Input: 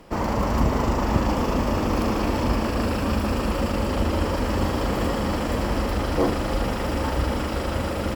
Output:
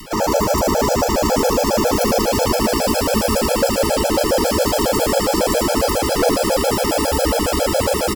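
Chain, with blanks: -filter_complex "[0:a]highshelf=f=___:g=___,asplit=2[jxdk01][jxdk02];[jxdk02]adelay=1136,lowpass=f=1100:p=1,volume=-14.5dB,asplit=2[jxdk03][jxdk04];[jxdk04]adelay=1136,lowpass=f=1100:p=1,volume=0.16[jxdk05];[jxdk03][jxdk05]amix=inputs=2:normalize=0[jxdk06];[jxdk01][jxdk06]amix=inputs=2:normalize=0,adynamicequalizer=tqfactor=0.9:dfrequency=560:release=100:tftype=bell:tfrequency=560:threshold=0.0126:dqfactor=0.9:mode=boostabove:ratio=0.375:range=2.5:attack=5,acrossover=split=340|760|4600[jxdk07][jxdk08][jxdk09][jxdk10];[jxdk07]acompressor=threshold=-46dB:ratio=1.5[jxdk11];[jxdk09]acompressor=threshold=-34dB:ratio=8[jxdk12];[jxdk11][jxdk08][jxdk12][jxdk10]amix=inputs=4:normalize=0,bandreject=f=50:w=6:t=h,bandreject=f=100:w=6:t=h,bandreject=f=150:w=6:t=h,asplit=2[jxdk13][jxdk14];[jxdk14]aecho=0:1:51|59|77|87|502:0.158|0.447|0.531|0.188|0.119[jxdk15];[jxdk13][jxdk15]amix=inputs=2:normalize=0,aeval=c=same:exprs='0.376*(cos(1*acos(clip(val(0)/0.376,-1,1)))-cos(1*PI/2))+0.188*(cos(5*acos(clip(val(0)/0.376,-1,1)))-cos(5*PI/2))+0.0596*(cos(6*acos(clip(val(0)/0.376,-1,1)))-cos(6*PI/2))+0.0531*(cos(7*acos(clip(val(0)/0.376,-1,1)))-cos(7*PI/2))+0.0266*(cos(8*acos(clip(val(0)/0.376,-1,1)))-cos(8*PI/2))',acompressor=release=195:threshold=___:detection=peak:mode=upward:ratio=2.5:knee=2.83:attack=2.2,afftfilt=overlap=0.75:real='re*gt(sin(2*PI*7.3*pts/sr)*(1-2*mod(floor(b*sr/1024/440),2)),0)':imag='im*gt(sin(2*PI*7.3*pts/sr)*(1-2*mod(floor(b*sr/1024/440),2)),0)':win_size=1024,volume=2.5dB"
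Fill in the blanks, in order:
3100, 11.5, -29dB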